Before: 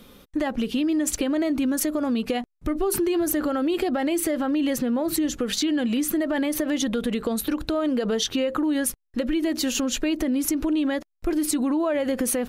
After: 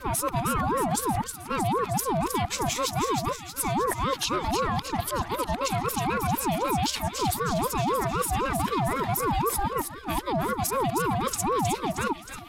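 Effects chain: whole clip reversed; on a send: thinning echo 0.314 s, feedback 60%, high-pass 1200 Hz, level -6 dB; on the sum: whine 750 Hz -42 dBFS; steep high-pass 210 Hz 96 dB/oct; ring modulator with a swept carrier 610 Hz, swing 35%, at 3.9 Hz

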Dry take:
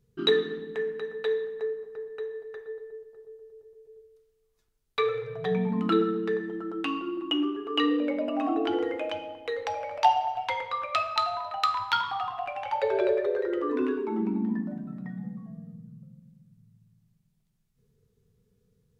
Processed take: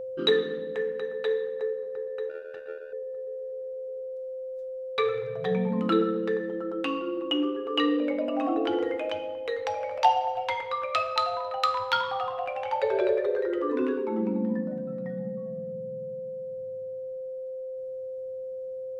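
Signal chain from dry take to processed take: whine 520 Hz -33 dBFS; 2.29–2.93 power-law curve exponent 2

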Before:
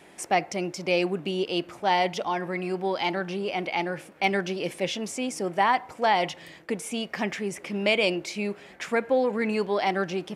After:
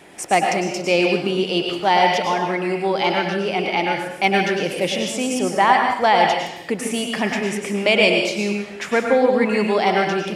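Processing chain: plate-style reverb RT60 0.73 s, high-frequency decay 1×, pre-delay 90 ms, DRR 1.5 dB; gain +6 dB

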